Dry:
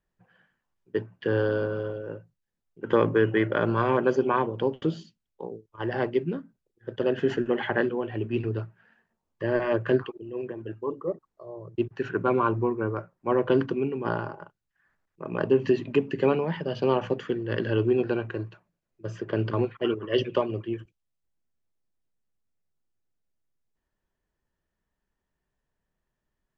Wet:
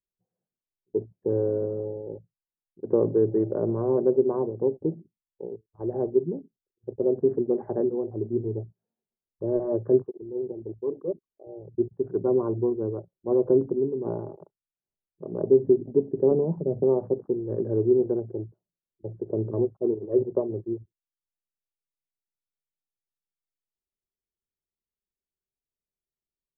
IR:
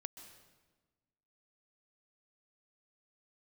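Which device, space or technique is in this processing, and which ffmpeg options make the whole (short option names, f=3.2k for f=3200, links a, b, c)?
under water: -filter_complex "[0:a]afwtdn=0.0158,lowpass=f=720:w=0.5412,lowpass=f=720:w=1.3066,equalizer=f=390:t=o:w=0.39:g=6.5,asettb=1/sr,asplit=3[a][b][c];[a]atrim=end=16.314[d];[b]atrim=start=16.31:end=16.84,asetpts=PTS-STARTPTS,afade=t=in:d=0.004:c=qsin,afade=t=out:st=0.526:d=0.004:c=qsin,tiltshelf=f=740:g=5.5[e];[c]atrim=start=16.836[f];[d][e]acrossfade=d=0.004:c1=hsin:c2=qsin[g];[g][f]acrossfade=d=0.004:c1=qsin:c2=hsin,volume=-2.5dB"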